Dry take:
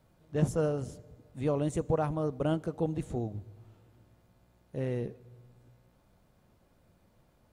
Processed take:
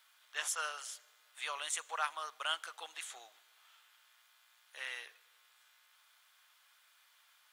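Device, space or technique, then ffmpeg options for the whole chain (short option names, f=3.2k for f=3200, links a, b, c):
headphones lying on a table: -af "highpass=f=1.3k:w=0.5412,highpass=f=1.3k:w=1.3066,equalizer=f=3.3k:t=o:w=0.29:g=6.5,volume=9.5dB"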